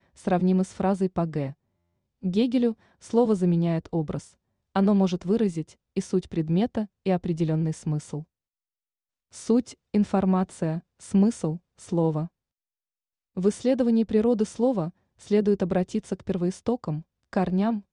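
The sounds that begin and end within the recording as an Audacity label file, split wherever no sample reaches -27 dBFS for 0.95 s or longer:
9.500000	12.250000	sound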